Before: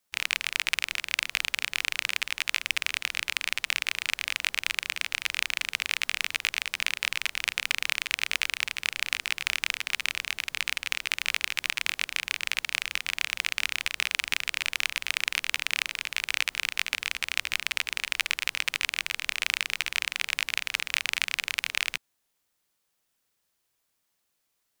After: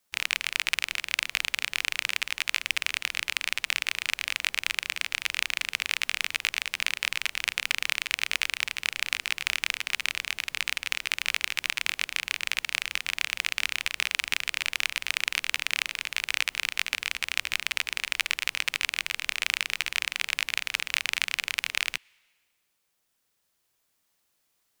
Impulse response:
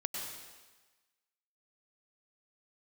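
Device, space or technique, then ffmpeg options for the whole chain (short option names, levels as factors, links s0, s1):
ducked reverb: -filter_complex "[0:a]asplit=3[s0][s1][s2];[1:a]atrim=start_sample=2205[s3];[s1][s3]afir=irnorm=-1:irlink=0[s4];[s2]apad=whole_len=1093682[s5];[s4][s5]sidechaincompress=threshold=0.01:ratio=8:attack=5.6:release=1280,volume=0.447[s6];[s0][s6]amix=inputs=2:normalize=0"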